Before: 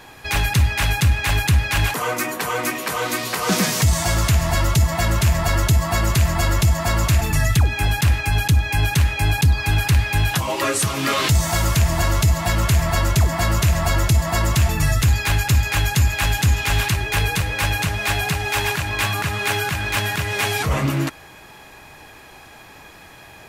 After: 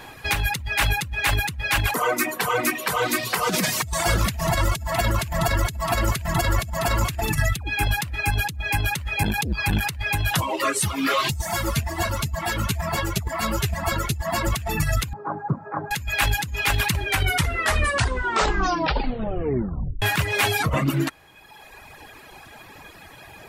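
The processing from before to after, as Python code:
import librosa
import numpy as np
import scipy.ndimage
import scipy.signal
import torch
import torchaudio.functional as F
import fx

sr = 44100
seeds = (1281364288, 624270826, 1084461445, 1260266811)

y = fx.echo_single(x, sr, ms=660, db=-9.0, at=(3.73, 7.42), fade=0.02)
y = fx.transformer_sat(y, sr, knee_hz=200.0, at=(9.23, 9.86))
y = fx.ensemble(y, sr, at=(10.44, 14.46), fade=0.02)
y = fx.ellip_bandpass(y, sr, low_hz=150.0, high_hz=1200.0, order=3, stop_db=40, at=(15.13, 15.91))
y = fx.edit(y, sr, fx.tape_stop(start_s=17.0, length_s=3.02), tone=tone)
y = fx.dereverb_blind(y, sr, rt60_s=1.5)
y = fx.peak_eq(y, sr, hz=6200.0, db=-3.5, octaves=0.77)
y = fx.over_compress(y, sr, threshold_db=-21.0, ratio=-0.5)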